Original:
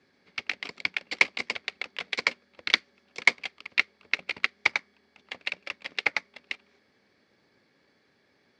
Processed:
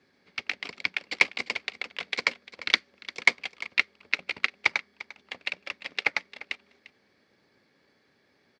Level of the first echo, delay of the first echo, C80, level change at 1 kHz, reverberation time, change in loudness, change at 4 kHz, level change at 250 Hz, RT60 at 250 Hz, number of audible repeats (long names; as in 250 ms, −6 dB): −17.5 dB, 348 ms, no reverb audible, 0.0 dB, no reverb audible, 0.0 dB, 0.0 dB, 0.0 dB, no reverb audible, 1